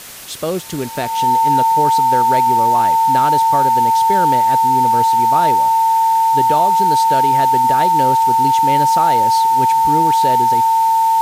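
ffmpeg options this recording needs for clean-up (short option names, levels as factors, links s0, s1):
-af "bandreject=f=900:w=30,afwtdn=0.022"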